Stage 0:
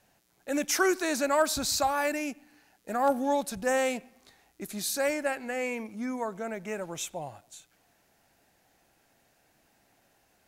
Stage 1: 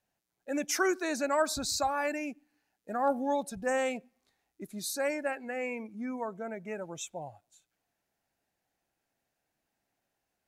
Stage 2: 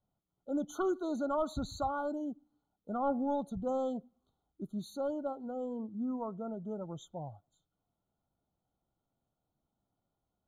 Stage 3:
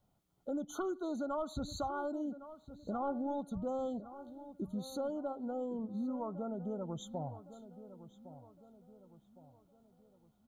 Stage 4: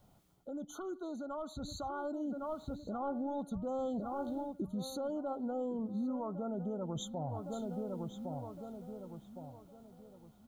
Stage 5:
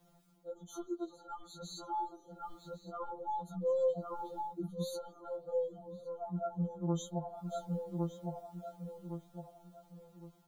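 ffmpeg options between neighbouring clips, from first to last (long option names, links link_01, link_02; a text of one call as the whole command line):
ffmpeg -i in.wav -af "afftdn=noise_reduction=13:noise_floor=-39,volume=-3dB" out.wav
ffmpeg -i in.wav -af "asoftclip=type=tanh:threshold=-19.5dB,bass=frequency=250:gain=10,treble=frequency=4000:gain=-14,afftfilt=real='re*eq(mod(floor(b*sr/1024/1500),2),0)':imag='im*eq(mod(floor(b*sr/1024/1500),2),0)':win_size=1024:overlap=0.75,volume=-3.5dB" out.wav
ffmpeg -i in.wav -filter_complex "[0:a]acompressor=threshold=-47dB:ratio=3,asplit=2[link_01][link_02];[link_02]adelay=1110,lowpass=frequency=1900:poles=1,volume=-13.5dB,asplit=2[link_03][link_04];[link_04]adelay=1110,lowpass=frequency=1900:poles=1,volume=0.45,asplit=2[link_05][link_06];[link_06]adelay=1110,lowpass=frequency=1900:poles=1,volume=0.45,asplit=2[link_07][link_08];[link_08]adelay=1110,lowpass=frequency=1900:poles=1,volume=0.45[link_09];[link_01][link_03][link_05][link_07][link_09]amix=inputs=5:normalize=0,volume=8dB" out.wav
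ffmpeg -i in.wav -af "areverse,acompressor=threshold=-46dB:ratio=5,areverse,alimiter=level_in=21.5dB:limit=-24dB:level=0:latency=1:release=293,volume=-21.5dB,dynaudnorm=framelen=340:gausssize=11:maxgain=4.5dB,volume=10.5dB" out.wav
ffmpeg -i in.wav -af "afftfilt=real='re*2.83*eq(mod(b,8),0)':imag='im*2.83*eq(mod(b,8),0)':win_size=2048:overlap=0.75,volume=2.5dB" out.wav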